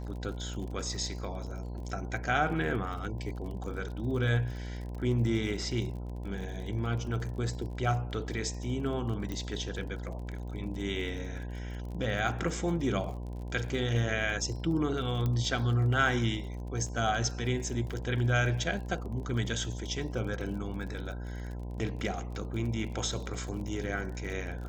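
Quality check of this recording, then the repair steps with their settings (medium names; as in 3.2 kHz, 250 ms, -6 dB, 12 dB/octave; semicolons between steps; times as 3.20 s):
buzz 60 Hz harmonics 17 -38 dBFS
crackle 43 per s -40 dBFS
9.32 s: pop -23 dBFS
15.26 s: pop -20 dBFS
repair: de-click; de-hum 60 Hz, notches 17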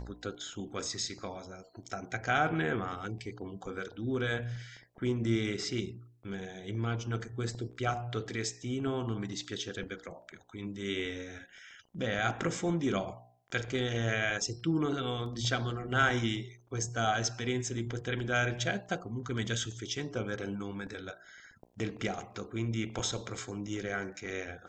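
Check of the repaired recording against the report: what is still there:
15.26 s: pop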